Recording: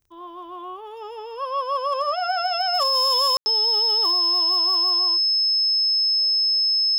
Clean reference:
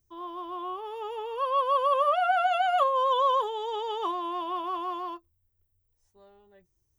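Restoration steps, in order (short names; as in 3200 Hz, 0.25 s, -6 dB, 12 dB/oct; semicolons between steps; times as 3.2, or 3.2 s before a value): clip repair -15.5 dBFS; de-click; notch 5200 Hz, Q 30; room tone fill 3.37–3.46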